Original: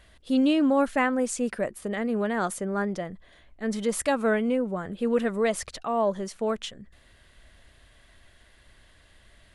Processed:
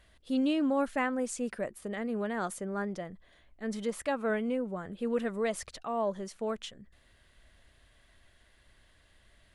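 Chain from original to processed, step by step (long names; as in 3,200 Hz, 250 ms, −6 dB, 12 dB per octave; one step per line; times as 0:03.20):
0:03.90–0:04.30: bass and treble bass −3 dB, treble −7 dB
level −6.5 dB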